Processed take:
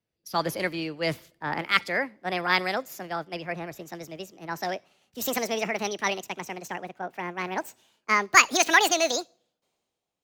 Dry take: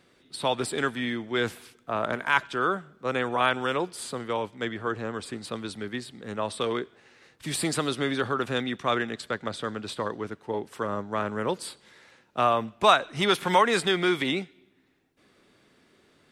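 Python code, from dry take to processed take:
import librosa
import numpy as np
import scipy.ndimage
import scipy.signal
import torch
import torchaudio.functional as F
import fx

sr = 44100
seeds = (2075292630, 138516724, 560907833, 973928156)

y = fx.speed_glide(x, sr, from_pct=129, to_pct=190)
y = fx.peak_eq(y, sr, hz=97.0, db=6.5, octaves=2.5)
y = fx.band_widen(y, sr, depth_pct=70)
y = y * librosa.db_to_amplitude(-1.5)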